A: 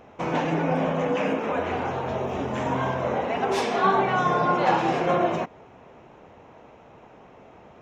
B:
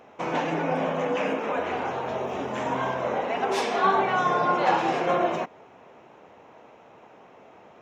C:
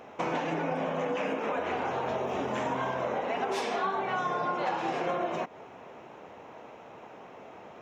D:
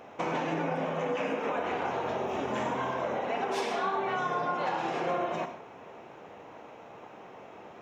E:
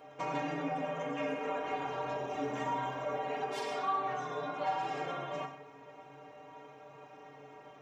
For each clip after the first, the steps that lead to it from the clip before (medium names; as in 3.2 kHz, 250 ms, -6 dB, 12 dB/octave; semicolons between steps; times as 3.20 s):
high-pass 300 Hz 6 dB/octave
compression, threshold -31 dBFS, peak gain reduction 13.5 dB; trim +3 dB
reverberation, pre-delay 3 ms, DRR 7 dB; trim -1 dB
inharmonic resonator 140 Hz, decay 0.23 s, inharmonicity 0.008; trim +5.5 dB